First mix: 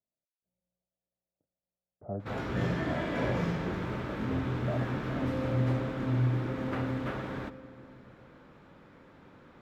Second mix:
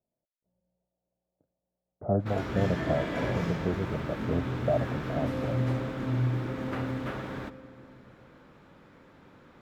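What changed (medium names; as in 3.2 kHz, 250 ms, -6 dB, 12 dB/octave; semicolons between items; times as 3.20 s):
speech +10.5 dB; master: add treble shelf 5.4 kHz +5.5 dB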